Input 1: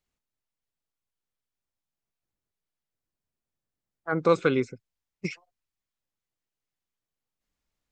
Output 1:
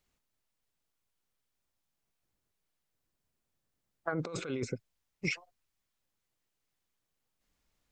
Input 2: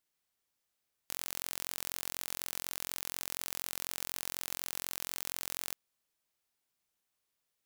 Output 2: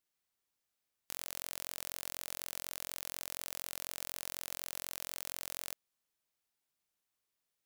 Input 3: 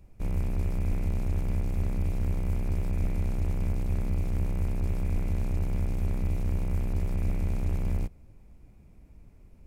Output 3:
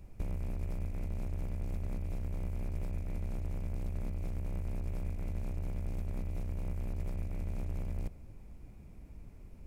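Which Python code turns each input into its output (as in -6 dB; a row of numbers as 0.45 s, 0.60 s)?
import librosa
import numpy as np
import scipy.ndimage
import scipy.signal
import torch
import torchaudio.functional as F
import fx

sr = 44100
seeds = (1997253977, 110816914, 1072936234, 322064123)

y = fx.dynamic_eq(x, sr, hz=600.0, q=3.5, threshold_db=-55.0, ratio=4.0, max_db=4)
y = fx.over_compress(y, sr, threshold_db=-32.0, ratio=-1.0)
y = F.gain(torch.from_numpy(y), -3.0).numpy()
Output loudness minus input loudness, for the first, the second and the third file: -10.5 LU, -3.0 LU, -8.5 LU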